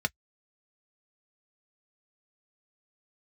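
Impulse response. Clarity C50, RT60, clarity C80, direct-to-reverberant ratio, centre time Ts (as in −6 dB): 48.0 dB, non-exponential decay, 60.0 dB, 6.0 dB, 2 ms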